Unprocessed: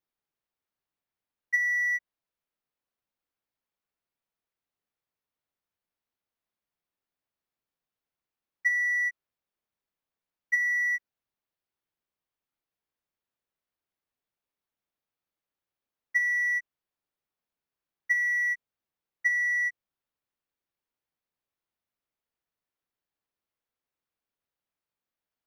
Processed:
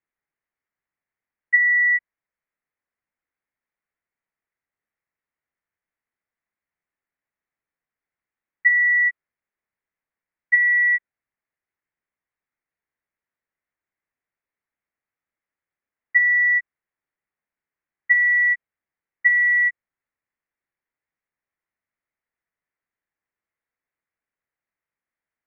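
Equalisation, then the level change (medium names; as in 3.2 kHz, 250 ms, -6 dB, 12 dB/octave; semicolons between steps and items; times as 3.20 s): resonant low-pass 2 kHz, resonance Q 3.8; distance through air 260 m; 0.0 dB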